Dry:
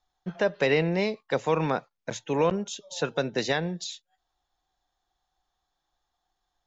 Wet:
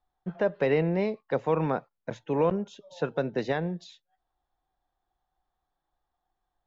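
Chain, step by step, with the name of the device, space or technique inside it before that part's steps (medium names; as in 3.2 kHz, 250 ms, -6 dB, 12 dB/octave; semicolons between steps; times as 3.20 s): through cloth (low-pass 6.3 kHz 12 dB/octave; treble shelf 2.8 kHz -18 dB)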